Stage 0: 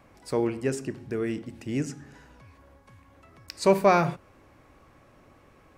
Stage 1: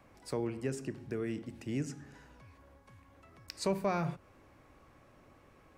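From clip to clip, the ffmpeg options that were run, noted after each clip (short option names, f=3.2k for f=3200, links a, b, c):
-filter_complex "[0:a]acrossover=split=180[a][b];[b]acompressor=threshold=-32dB:ratio=2[c];[a][c]amix=inputs=2:normalize=0,volume=-4.5dB"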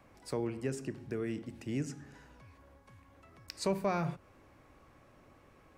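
-af anull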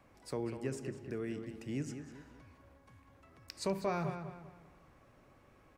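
-filter_complex "[0:a]asplit=2[a][b];[b]adelay=197,lowpass=f=3.5k:p=1,volume=-8dB,asplit=2[c][d];[d]adelay=197,lowpass=f=3.5k:p=1,volume=0.38,asplit=2[e][f];[f]adelay=197,lowpass=f=3.5k:p=1,volume=0.38,asplit=2[g][h];[h]adelay=197,lowpass=f=3.5k:p=1,volume=0.38[i];[a][c][e][g][i]amix=inputs=5:normalize=0,volume=-3dB"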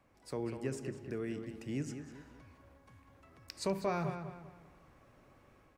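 -af "dynaudnorm=f=120:g=5:m=6dB,volume=-5.5dB"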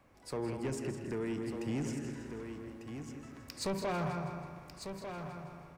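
-filter_complex "[0:a]asplit=2[a][b];[b]aecho=0:1:162|324|486|648|810:0.282|0.141|0.0705|0.0352|0.0176[c];[a][c]amix=inputs=2:normalize=0,asoftclip=type=tanh:threshold=-34.5dB,asplit=2[d][e];[e]aecho=0:1:1197:0.398[f];[d][f]amix=inputs=2:normalize=0,volume=4.5dB"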